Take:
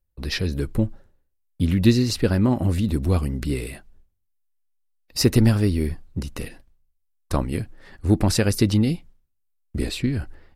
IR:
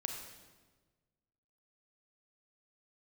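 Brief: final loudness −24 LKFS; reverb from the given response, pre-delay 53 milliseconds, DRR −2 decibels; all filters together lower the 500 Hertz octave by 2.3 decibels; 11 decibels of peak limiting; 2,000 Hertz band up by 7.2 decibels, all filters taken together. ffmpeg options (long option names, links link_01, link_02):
-filter_complex "[0:a]equalizer=frequency=500:width_type=o:gain=-3.5,equalizer=frequency=2000:width_type=o:gain=9,alimiter=limit=-15.5dB:level=0:latency=1,asplit=2[link_01][link_02];[1:a]atrim=start_sample=2205,adelay=53[link_03];[link_02][link_03]afir=irnorm=-1:irlink=0,volume=1.5dB[link_04];[link_01][link_04]amix=inputs=2:normalize=0,volume=-1dB"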